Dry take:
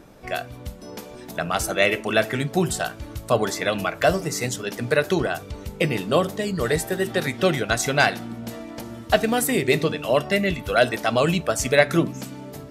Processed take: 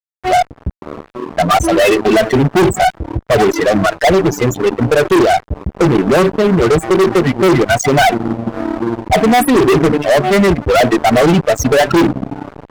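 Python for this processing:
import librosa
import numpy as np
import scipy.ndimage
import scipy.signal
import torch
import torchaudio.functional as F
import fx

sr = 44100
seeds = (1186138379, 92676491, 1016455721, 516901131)

y = fx.spec_topn(x, sr, count=8)
y = fx.small_body(y, sr, hz=(350.0, 740.0, 1200.0, 3100.0), ring_ms=40, db=12)
y = fx.fuzz(y, sr, gain_db=25.0, gate_db=-34.0)
y = y * 10.0 ** (6.0 / 20.0)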